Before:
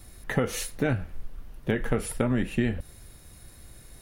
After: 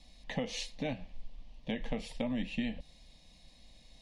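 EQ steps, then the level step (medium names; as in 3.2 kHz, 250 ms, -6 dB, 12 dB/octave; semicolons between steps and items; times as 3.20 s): distance through air 130 m; peaking EQ 3.9 kHz +12 dB 2.2 oct; static phaser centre 380 Hz, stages 6; -7.0 dB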